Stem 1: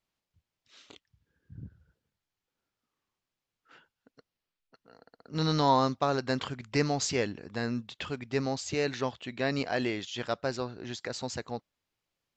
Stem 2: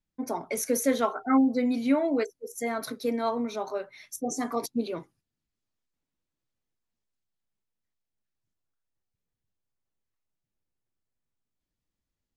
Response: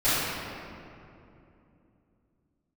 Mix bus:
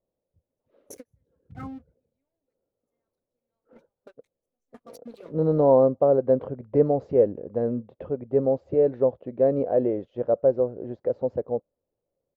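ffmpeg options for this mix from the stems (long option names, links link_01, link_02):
-filter_complex "[0:a]lowpass=frequency=530:width_type=q:width=4.9,volume=2dB,asplit=2[link_01][link_02];[1:a]acompressor=threshold=-30dB:ratio=2,aeval=exprs='sgn(val(0))*max(abs(val(0))-0.00562,0)':channel_layout=same,adelay=300,volume=-9.5dB[link_03];[link_02]apad=whole_len=558367[link_04];[link_03][link_04]sidechaingate=range=-46dB:threshold=-52dB:ratio=16:detection=peak[link_05];[link_01][link_05]amix=inputs=2:normalize=0"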